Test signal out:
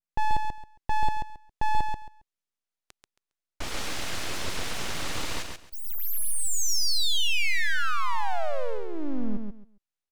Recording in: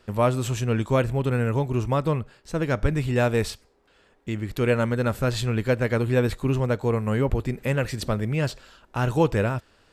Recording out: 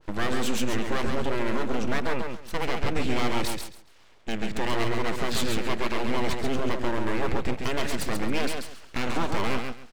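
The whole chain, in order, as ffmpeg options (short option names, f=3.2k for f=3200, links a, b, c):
-af "lowpass=6.3k,equalizer=f=190:t=o:w=0.3:g=-10,alimiter=limit=-19.5dB:level=0:latency=1:release=29,aeval=exprs='abs(val(0))':c=same,aecho=1:1:136|272|408:0.562|0.118|0.0248,adynamicequalizer=threshold=0.00708:dfrequency=1600:dqfactor=0.7:tfrequency=1600:tqfactor=0.7:attack=5:release=100:ratio=0.375:range=1.5:mode=boostabove:tftype=highshelf,volume=3dB"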